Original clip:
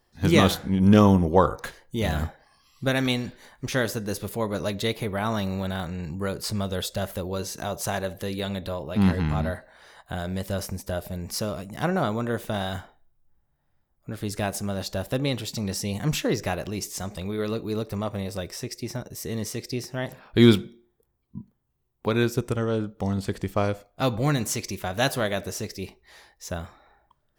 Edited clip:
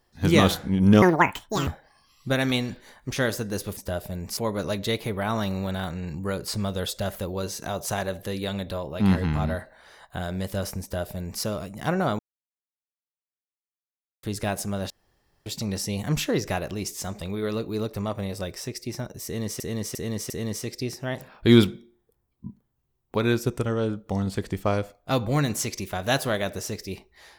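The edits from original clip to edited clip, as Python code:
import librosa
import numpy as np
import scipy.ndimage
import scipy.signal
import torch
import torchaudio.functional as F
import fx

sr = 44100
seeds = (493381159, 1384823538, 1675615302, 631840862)

y = fx.edit(x, sr, fx.speed_span(start_s=1.02, length_s=1.21, speed=1.86),
    fx.duplicate(start_s=10.78, length_s=0.6, to_s=4.33),
    fx.silence(start_s=12.15, length_s=2.04),
    fx.room_tone_fill(start_s=14.86, length_s=0.56),
    fx.repeat(start_s=19.21, length_s=0.35, count=4), tone=tone)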